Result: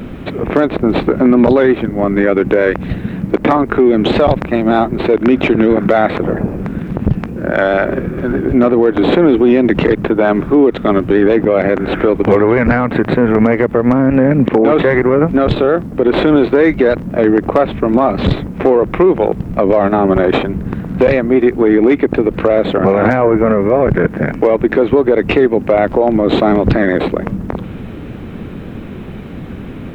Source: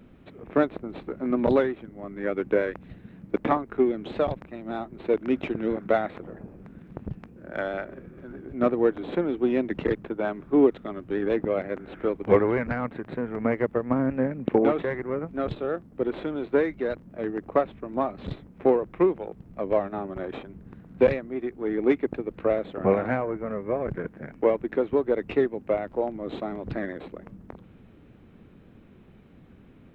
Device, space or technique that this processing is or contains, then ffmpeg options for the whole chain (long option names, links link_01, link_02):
loud club master: -af "acompressor=threshold=-24dB:ratio=2.5,asoftclip=type=hard:threshold=-16dB,alimiter=level_in=26dB:limit=-1dB:release=50:level=0:latency=1,volume=-1dB"